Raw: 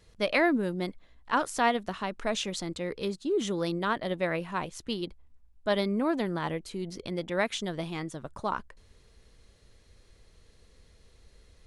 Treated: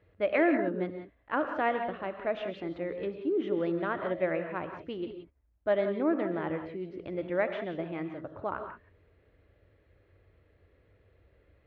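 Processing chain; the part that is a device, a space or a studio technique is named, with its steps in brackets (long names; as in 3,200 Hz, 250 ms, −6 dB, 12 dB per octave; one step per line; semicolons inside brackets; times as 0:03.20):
bass cabinet (loudspeaker in its box 66–2,400 Hz, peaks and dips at 96 Hz +6 dB, 150 Hz −4 dB, 220 Hz −7 dB, 310 Hz +6 dB, 590 Hz +5 dB, 1,000 Hz −5 dB)
reverb whose tail is shaped and stops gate 200 ms rising, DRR 6.5 dB
level −3 dB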